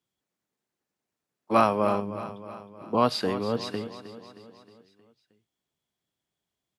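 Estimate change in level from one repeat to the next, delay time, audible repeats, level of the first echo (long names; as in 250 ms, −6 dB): −5.5 dB, 313 ms, 4, −13.0 dB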